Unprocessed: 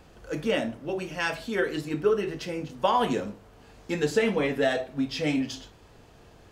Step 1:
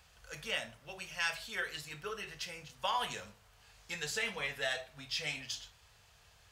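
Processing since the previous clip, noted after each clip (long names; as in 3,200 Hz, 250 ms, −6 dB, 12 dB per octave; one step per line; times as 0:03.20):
high-pass filter 51 Hz
guitar amp tone stack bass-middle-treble 10-0-10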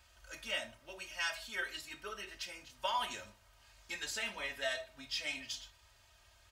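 comb filter 3.2 ms, depth 88%
level −4 dB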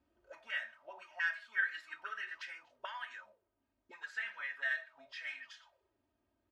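speech leveller within 4 dB 0.5 s
envelope filter 240–1,700 Hz, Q 6.7, up, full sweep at −40 dBFS
level +10 dB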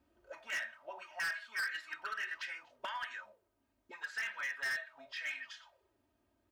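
hard clipping −37.5 dBFS, distortion −6 dB
level +4 dB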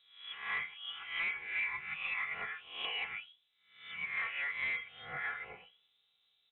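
peak hold with a rise ahead of every peak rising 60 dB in 0.58 s
voice inversion scrambler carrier 3,900 Hz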